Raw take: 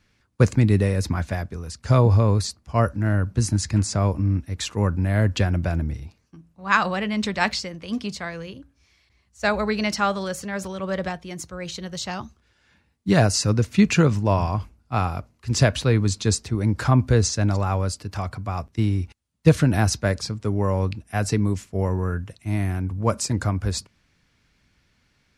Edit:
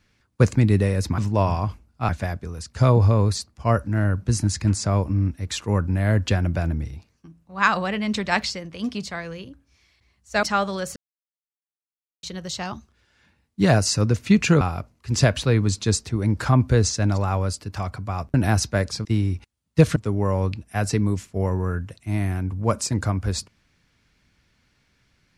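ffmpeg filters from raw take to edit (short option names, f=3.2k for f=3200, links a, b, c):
-filter_complex "[0:a]asplit=10[a][b][c][d][e][f][g][h][i][j];[a]atrim=end=1.182[k];[b]atrim=start=14.088:end=15.002[l];[c]atrim=start=1.178:end=9.522[m];[d]atrim=start=9.908:end=10.44,asetpts=PTS-STARTPTS,afade=t=out:st=0.528:d=0.004:c=hsin[n];[e]atrim=start=10.44:end=11.71,asetpts=PTS-STARTPTS,volume=0[o];[f]atrim=start=11.71:end=14.092,asetpts=PTS-STARTPTS,afade=t=in:d=0.004:c=hsin[p];[g]atrim=start=14.998:end=18.732[q];[h]atrim=start=19.638:end=20.352[r];[i]atrim=start=18.728:end=19.642[s];[j]atrim=start=20.348[t];[k][l]acrossfade=d=0.004:c1=hsin:c2=hsin[u];[u][m]acrossfade=d=0.004:c1=hsin:c2=hsin[v];[n][o][p]concat=n=3:v=0:a=1[w];[v][w]acrossfade=d=0.004:c1=hsin:c2=hsin[x];[x][q]acrossfade=d=0.004:c1=hsin:c2=hsin[y];[y][r]acrossfade=d=0.004:c1=hsin:c2=hsin[z];[z][s]acrossfade=d=0.004:c1=hsin:c2=hsin[aa];[aa][t]acrossfade=d=0.004:c1=hsin:c2=hsin"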